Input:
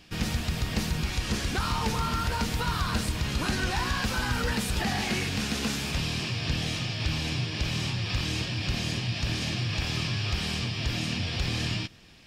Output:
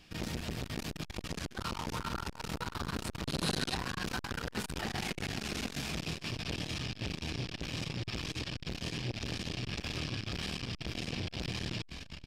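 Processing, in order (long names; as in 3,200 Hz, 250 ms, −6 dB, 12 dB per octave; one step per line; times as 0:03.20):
echo with shifted repeats 409 ms, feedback 49%, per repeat −48 Hz, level −8.5 dB
flanger 0.93 Hz, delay 0.7 ms, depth 8.5 ms, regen +85%
0:03.24–0:03.75: graphic EQ with 15 bands 160 Hz +11 dB, 4,000 Hz +10 dB, 10,000 Hz +10 dB
saturating transformer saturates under 870 Hz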